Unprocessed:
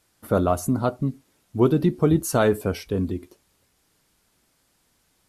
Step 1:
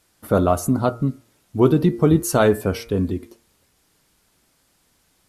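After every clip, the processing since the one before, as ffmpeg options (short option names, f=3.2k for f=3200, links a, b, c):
-af "bandreject=f=115.9:t=h:w=4,bandreject=f=231.8:t=h:w=4,bandreject=f=347.7:t=h:w=4,bandreject=f=463.6:t=h:w=4,bandreject=f=579.5:t=h:w=4,bandreject=f=695.4:t=h:w=4,bandreject=f=811.3:t=h:w=4,bandreject=f=927.2:t=h:w=4,bandreject=f=1.0431k:t=h:w=4,bandreject=f=1.159k:t=h:w=4,bandreject=f=1.2749k:t=h:w=4,bandreject=f=1.3908k:t=h:w=4,bandreject=f=1.5067k:t=h:w=4,bandreject=f=1.6226k:t=h:w=4,bandreject=f=1.7385k:t=h:w=4,bandreject=f=1.8544k:t=h:w=4,bandreject=f=1.9703k:t=h:w=4,bandreject=f=2.0862k:t=h:w=4,bandreject=f=2.2021k:t=h:w=4,bandreject=f=2.318k:t=h:w=4,bandreject=f=2.4339k:t=h:w=4,volume=3.5dB"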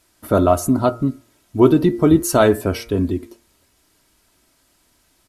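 -af "aecho=1:1:3.1:0.39,volume=2dB"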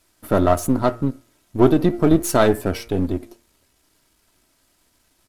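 -af "aeval=exprs='if(lt(val(0),0),0.447*val(0),val(0))':c=same"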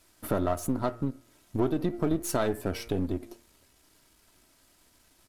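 -af "acompressor=threshold=-29dB:ratio=2.5"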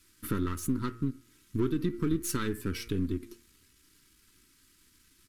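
-af "asuperstop=centerf=680:order=4:qfactor=0.77"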